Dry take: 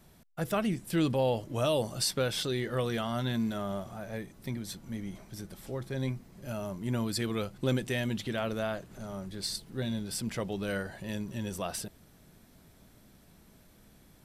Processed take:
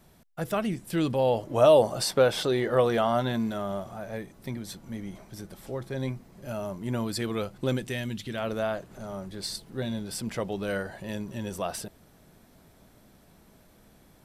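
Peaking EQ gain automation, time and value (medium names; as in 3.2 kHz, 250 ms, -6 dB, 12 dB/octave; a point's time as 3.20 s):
peaking EQ 700 Hz 2.2 oct
1.14 s +2.5 dB
1.64 s +12.5 dB
3.11 s +12.5 dB
3.58 s +4.5 dB
7.60 s +4.5 dB
8.22 s -7 dB
8.50 s +5 dB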